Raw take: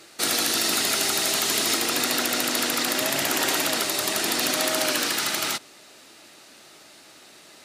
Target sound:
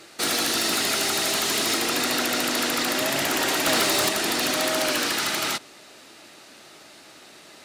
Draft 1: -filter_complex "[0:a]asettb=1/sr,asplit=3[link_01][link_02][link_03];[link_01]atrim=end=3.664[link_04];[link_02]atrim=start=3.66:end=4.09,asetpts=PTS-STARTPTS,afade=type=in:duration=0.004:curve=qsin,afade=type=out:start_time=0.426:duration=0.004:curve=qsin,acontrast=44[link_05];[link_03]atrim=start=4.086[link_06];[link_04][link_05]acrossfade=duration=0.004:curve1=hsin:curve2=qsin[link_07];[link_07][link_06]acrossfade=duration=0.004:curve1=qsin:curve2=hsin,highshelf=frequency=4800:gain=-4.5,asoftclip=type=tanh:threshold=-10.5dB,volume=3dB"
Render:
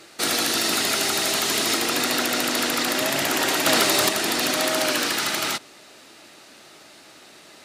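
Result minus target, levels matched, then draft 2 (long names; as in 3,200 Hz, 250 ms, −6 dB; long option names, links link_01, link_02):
soft clipping: distortion −12 dB
-filter_complex "[0:a]asettb=1/sr,asplit=3[link_01][link_02][link_03];[link_01]atrim=end=3.664[link_04];[link_02]atrim=start=3.66:end=4.09,asetpts=PTS-STARTPTS,afade=type=in:duration=0.004:curve=qsin,afade=type=out:start_time=0.426:duration=0.004:curve=qsin,acontrast=44[link_05];[link_03]atrim=start=4.086[link_06];[link_04][link_05]acrossfade=duration=0.004:curve1=hsin:curve2=qsin[link_07];[link_07][link_06]acrossfade=duration=0.004:curve1=qsin:curve2=hsin,highshelf=frequency=4800:gain=-4.5,asoftclip=type=tanh:threshold=-19dB,volume=3dB"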